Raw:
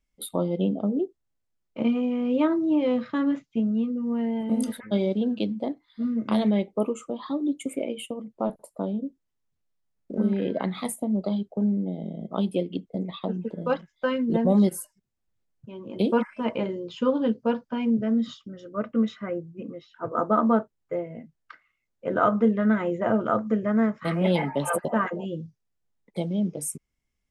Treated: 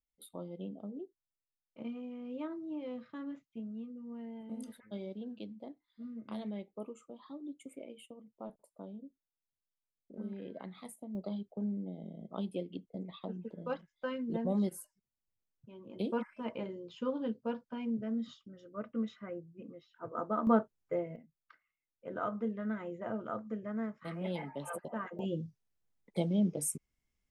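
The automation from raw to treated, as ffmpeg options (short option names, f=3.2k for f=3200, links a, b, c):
-af "asetnsamples=n=441:p=0,asendcmd='11.15 volume volume -12dB;20.47 volume volume -5dB;21.16 volume volume -15dB;25.19 volume volume -3.5dB',volume=-18dB"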